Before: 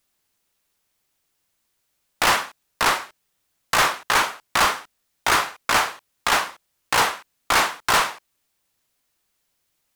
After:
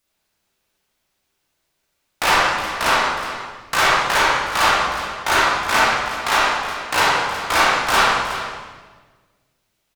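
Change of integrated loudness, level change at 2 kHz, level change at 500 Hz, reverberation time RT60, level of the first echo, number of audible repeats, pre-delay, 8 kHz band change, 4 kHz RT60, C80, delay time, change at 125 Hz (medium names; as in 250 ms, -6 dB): +3.5 dB, +5.0 dB, +5.5 dB, 1.5 s, -12.0 dB, 1, 24 ms, 0.0 dB, 1.4 s, 0.5 dB, 366 ms, +4.5 dB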